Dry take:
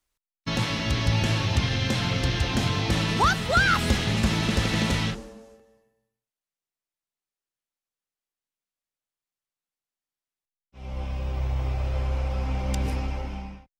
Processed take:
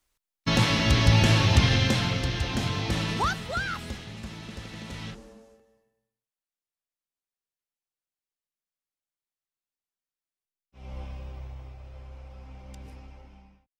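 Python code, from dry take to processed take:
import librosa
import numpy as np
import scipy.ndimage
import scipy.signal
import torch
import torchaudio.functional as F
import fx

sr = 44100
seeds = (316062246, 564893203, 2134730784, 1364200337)

y = fx.gain(x, sr, db=fx.line((1.74, 4.0), (2.27, -3.5), (3.1, -3.5), (4.1, -16.0), (4.84, -16.0), (5.32, -5.0), (10.94, -5.0), (11.77, -17.5)))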